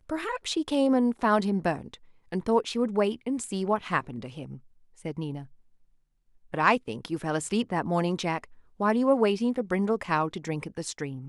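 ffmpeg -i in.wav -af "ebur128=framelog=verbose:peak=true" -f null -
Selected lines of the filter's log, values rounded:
Integrated loudness:
  I:         -27.6 LUFS
  Threshold: -38.2 LUFS
Loudness range:
  LRA:         5.2 LU
  Threshold: -48.8 LUFS
  LRA low:   -32.2 LUFS
  LRA high:  -26.9 LUFS
True peak:
  Peak:       -6.8 dBFS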